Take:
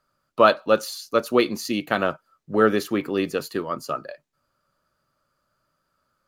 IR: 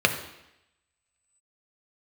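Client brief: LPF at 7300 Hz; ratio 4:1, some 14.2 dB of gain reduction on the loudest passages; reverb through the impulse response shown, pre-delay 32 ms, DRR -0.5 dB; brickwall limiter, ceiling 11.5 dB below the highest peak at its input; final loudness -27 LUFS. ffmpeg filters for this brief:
-filter_complex "[0:a]lowpass=7.3k,acompressor=threshold=-29dB:ratio=4,alimiter=level_in=1dB:limit=-24dB:level=0:latency=1,volume=-1dB,asplit=2[a][b];[1:a]atrim=start_sample=2205,adelay=32[c];[b][c]afir=irnorm=-1:irlink=0,volume=-16dB[d];[a][d]amix=inputs=2:normalize=0,volume=8dB"

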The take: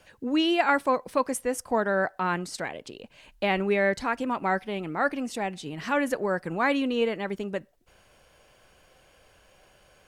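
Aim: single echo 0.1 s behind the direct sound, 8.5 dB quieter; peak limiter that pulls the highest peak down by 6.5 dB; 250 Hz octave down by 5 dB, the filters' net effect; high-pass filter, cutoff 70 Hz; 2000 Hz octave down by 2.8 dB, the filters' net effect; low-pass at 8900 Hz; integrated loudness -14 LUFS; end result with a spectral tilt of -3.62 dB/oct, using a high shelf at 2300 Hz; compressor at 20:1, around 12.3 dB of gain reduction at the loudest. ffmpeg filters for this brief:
-af "highpass=70,lowpass=8.9k,equalizer=f=250:t=o:g=-6.5,equalizer=f=2k:t=o:g=-6,highshelf=f=2.3k:g=5,acompressor=threshold=-31dB:ratio=20,alimiter=level_in=4dB:limit=-24dB:level=0:latency=1,volume=-4dB,aecho=1:1:100:0.376,volume=23.5dB"

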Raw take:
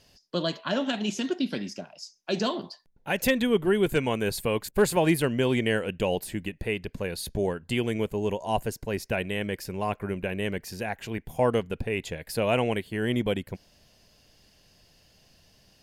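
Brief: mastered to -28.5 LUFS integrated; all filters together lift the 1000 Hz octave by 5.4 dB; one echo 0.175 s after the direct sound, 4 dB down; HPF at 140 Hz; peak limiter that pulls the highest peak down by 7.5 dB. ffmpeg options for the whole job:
-af "highpass=140,equalizer=f=1k:t=o:g=7,alimiter=limit=-14.5dB:level=0:latency=1,aecho=1:1:175:0.631,volume=-1.5dB"

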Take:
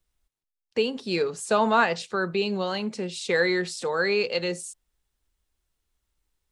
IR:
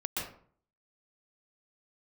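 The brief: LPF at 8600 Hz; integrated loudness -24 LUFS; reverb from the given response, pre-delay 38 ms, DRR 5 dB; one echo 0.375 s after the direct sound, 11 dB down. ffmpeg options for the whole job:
-filter_complex "[0:a]lowpass=8.6k,aecho=1:1:375:0.282,asplit=2[a][b];[1:a]atrim=start_sample=2205,adelay=38[c];[b][c]afir=irnorm=-1:irlink=0,volume=-9.5dB[d];[a][d]amix=inputs=2:normalize=0,volume=0.5dB"

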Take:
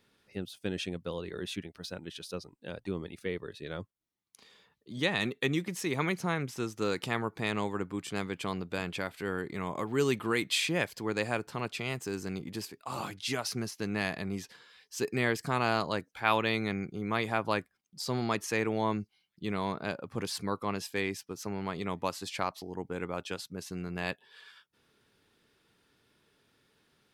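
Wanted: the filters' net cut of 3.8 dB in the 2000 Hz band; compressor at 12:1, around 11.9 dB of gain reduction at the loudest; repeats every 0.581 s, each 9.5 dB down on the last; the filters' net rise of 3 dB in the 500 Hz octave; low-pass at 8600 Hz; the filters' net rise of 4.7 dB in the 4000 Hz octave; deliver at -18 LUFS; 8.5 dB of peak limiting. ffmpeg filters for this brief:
-af "lowpass=8.6k,equalizer=f=500:t=o:g=4,equalizer=f=2k:t=o:g=-7.5,equalizer=f=4k:t=o:g=8,acompressor=threshold=-33dB:ratio=12,alimiter=level_in=3dB:limit=-24dB:level=0:latency=1,volume=-3dB,aecho=1:1:581|1162|1743|2324:0.335|0.111|0.0365|0.012,volume=21.5dB"

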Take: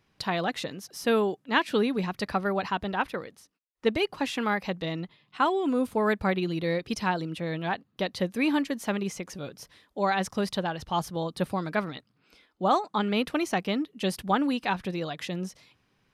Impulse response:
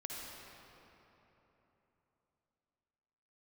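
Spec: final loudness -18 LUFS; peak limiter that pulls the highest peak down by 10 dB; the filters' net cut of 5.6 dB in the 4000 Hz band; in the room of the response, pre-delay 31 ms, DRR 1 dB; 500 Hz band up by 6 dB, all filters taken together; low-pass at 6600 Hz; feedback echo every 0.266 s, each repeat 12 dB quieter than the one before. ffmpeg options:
-filter_complex "[0:a]lowpass=6.6k,equalizer=f=500:t=o:g=7.5,equalizer=f=4k:t=o:g=-7.5,alimiter=limit=-18dB:level=0:latency=1,aecho=1:1:266|532|798:0.251|0.0628|0.0157,asplit=2[a][b];[1:a]atrim=start_sample=2205,adelay=31[c];[b][c]afir=irnorm=-1:irlink=0,volume=-1dB[d];[a][d]amix=inputs=2:normalize=0,volume=8dB"

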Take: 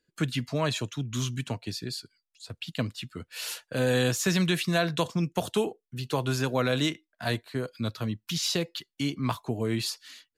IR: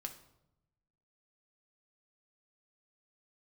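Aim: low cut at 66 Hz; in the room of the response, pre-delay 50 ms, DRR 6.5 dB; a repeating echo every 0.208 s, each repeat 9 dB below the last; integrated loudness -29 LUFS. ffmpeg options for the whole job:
-filter_complex "[0:a]highpass=66,aecho=1:1:208|416|624|832:0.355|0.124|0.0435|0.0152,asplit=2[a][b];[1:a]atrim=start_sample=2205,adelay=50[c];[b][c]afir=irnorm=-1:irlink=0,volume=-4dB[d];[a][d]amix=inputs=2:normalize=0,volume=-0.5dB"

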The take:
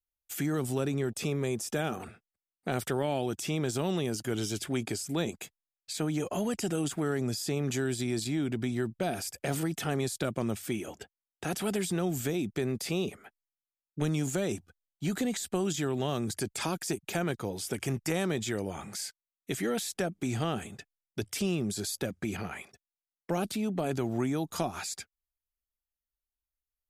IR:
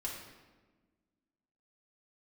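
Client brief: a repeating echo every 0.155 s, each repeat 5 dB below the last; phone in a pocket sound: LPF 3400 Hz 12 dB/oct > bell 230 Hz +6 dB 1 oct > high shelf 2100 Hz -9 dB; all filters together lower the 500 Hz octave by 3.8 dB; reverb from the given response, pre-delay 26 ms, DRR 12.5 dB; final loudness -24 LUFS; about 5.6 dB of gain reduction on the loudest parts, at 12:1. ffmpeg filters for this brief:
-filter_complex "[0:a]equalizer=f=500:t=o:g=-7,acompressor=threshold=-33dB:ratio=12,aecho=1:1:155|310|465|620|775|930|1085:0.562|0.315|0.176|0.0988|0.0553|0.031|0.0173,asplit=2[a][b];[1:a]atrim=start_sample=2205,adelay=26[c];[b][c]afir=irnorm=-1:irlink=0,volume=-13.5dB[d];[a][d]amix=inputs=2:normalize=0,lowpass=3.4k,equalizer=f=230:t=o:w=1:g=6,highshelf=f=2.1k:g=-9,volume=11dB"

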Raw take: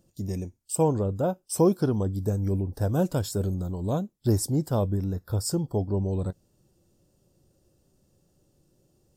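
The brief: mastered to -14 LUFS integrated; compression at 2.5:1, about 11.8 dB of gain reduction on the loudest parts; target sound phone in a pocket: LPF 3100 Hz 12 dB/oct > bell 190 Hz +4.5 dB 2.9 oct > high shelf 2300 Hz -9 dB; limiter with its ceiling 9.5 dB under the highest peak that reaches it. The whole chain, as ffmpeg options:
-af "acompressor=threshold=-34dB:ratio=2.5,alimiter=level_in=6.5dB:limit=-24dB:level=0:latency=1,volume=-6.5dB,lowpass=3.1k,equalizer=f=190:t=o:w=2.9:g=4.5,highshelf=f=2.3k:g=-9,volume=21.5dB"

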